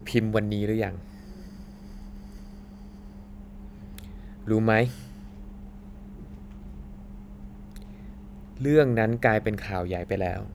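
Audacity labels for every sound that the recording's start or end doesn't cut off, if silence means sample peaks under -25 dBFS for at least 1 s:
3.980000	4.880000	sound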